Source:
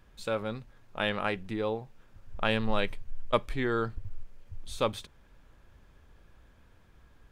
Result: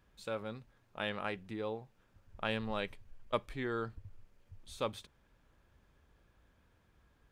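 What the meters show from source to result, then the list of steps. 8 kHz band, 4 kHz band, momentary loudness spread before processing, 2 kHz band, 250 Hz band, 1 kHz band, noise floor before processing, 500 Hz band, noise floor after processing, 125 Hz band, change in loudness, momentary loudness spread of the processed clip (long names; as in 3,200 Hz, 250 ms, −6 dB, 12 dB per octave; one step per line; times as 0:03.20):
−7.5 dB, −7.5 dB, 18 LU, −7.5 dB, −7.5 dB, −7.5 dB, −60 dBFS, −7.5 dB, −71 dBFS, −8.0 dB, −7.5 dB, 16 LU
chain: high-pass filter 45 Hz 6 dB per octave
level −7.5 dB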